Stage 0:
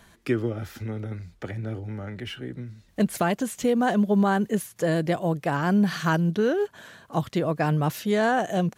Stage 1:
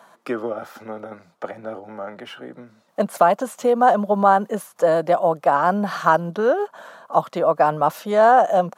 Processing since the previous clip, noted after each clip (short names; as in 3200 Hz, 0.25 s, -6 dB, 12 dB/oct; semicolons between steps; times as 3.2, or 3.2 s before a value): HPF 180 Hz 24 dB/oct; band shelf 840 Hz +13.5 dB; gain -2 dB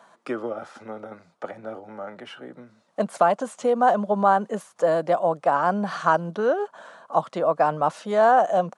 downsampling 22050 Hz; gain -3.5 dB